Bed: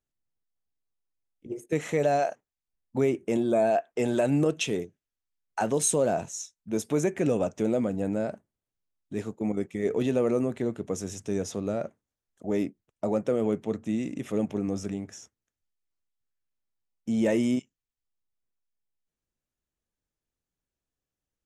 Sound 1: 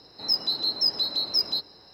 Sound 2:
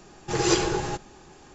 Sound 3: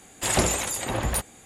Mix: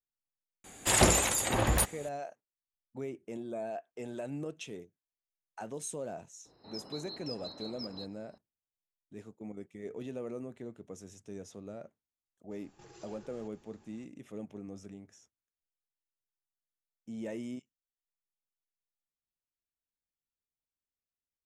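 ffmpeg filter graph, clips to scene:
ffmpeg -i bed.wav -i cue0.wav -i cue1.wav -i cue2.wav -filter_complex "[0:a]volume=-15dB[link_01];[1:a]lowpass=frequency=1000:poles=1[link_02];[2:a]acompressor=threshold=-36dB:ratio=6:attack=3.2:release=140:knee=1:detection=peak[link_03];[3:a]atrim=end=1.45,asetpts=PTS-STARTPTS,volume=-1dB,afade=type=in:duration=0.004:curve=hsin,afade=type=out:start_time=1.446:duration=0.004:curve=hsin,adelay=640[link_04];[link_02]atrim=end=1.93,asetpts=PTS-STARTPTS,volume=-7.5dB,afade=type=in:duration=0.004:curve=hsin,afade=type=out:start_time=1.926:duration=0.004:curve=hsin,adelay=6450[link_05];[link_03]atrim=end=1.54,asetpts=PTS-STARTPTS,volume=-16.5dB,afade=type=in:duration=0.004:curve=hsin,afade=type=out:start_time=1.536:duration=0.004:curve=hsin,adelay=12510[link_06];[link_01][link_04][link_05][link_06]amix=inputs=4:normalize=0" out.wav

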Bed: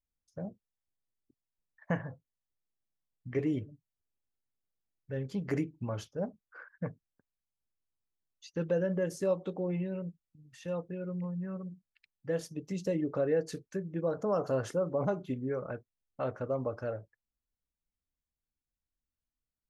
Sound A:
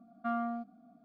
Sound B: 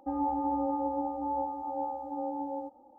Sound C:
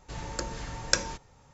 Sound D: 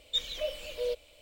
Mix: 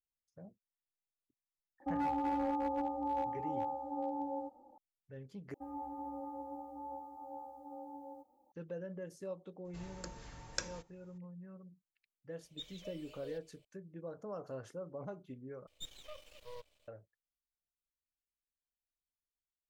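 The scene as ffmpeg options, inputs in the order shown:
ffmpeg -i bed.wav -i cue0.wav -i cue1.wav -i cue2.wav -i cue3.wav -filter_complex "[2:a]asplit=2[link_01][link_02];[4:a]asplit=2[link_03][link_04];[0:a]volume=-13.5dB[link_05];[link_01]asoftclip=type=hard:threshold=-26dB[link_06];[link_02]aemphasis=mode=production:type=75kf[link_07];[link_04]aeval=exprs='max(val(0),0)':channel_layout=same[link_08];[link_05]asplit=3[link_09][link_10][link_11];[link_09]atrim=end=5.544[link_12];[link_07]atrim=end=2.98,asetpts=PTS-STARTPTS,volume=-14dB[link_13];[link_10]atrim=start=8.516:end=15.674[link_14];[link_08]atrim=end=1.21,asetpts=PTS-STARTPTS,volume=-13dB[link_15];[link_11]atrim=start=16.876[link_16];[link_06]atrim=end=2.98,asetpts=PTS-STARTPTS,volume=-3.5dB,afade=type=in:duration=0.004:curve=hsin,afade=type=out:start_time=2.976:duration=0.004:curve=hsin,adelay=1800[link_17];[3:a]atrim=end=1.53,asetpts=PTS-STARTPTS,volume=-13.5dB,afade=type=in:duration=0.004:curve=hsin,afade=type=out:start_time=1.526:duration=0.004:curve=hsin,adelay=9650[link_18];[link_03]atrim=end=1.21,asetpts=PTS-STARTPTS,volume=-17dB,afade=type=in:duration=0.004:curve=hsin,afade=type=out:start_time=1.206:duration=0.004:curve=hsin,adelay=12440[link_19];[link_12][link_13]acrossfade=duration=0.004:curve1=hsin:curve2=hsin[link_20];[link_20][link_14]acrossfade=duration=0.004:curve1=hsin:curve2=hsin[link_21];[link_21][link_15]acrossfade=duration=0.004:curve1=hsin:curve2=hsin[link_22];[link_22][link_16]acrossfade=duration=0.004:curve1=hsin:curve2=hsin[link_23];[link_23][link_17][link_18][link_19]amix=inputs=4:normalize=0" out.wav

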